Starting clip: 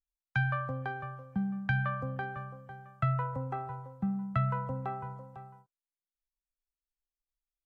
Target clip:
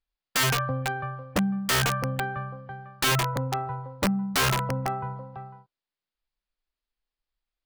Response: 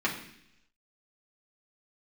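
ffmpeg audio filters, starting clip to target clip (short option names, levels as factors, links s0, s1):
-af "aresample=11025,aresample=44100,aeval=exprs='(mod(18.8*val(0)+1,2)-1)/18.8':c=same,volume=2.37"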